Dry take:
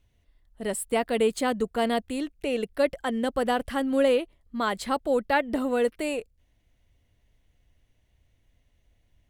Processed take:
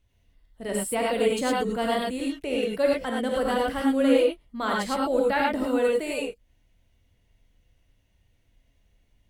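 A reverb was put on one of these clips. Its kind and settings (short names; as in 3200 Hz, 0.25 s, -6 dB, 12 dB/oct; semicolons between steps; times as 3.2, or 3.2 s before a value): non-linear reverb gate 0.13 s rising, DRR -2.5 dB; gain -3 dB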